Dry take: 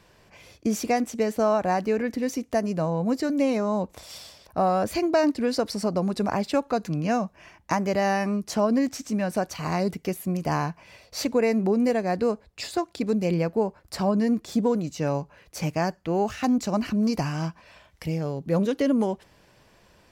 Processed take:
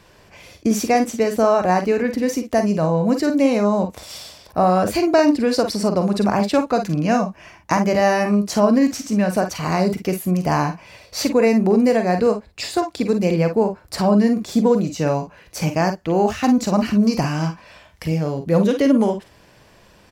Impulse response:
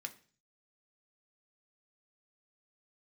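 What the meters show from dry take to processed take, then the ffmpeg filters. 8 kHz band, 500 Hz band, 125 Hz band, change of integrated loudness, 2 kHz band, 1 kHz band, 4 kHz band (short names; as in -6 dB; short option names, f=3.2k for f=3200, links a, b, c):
+7.0 dB, +7.0 dB, +7.0 dB, +7.0 dB, +6.5 dB, +6.5 dB, +7.0 dB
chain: -af "aecho=1:1:44|54:0.335|0.299,volume=6dB"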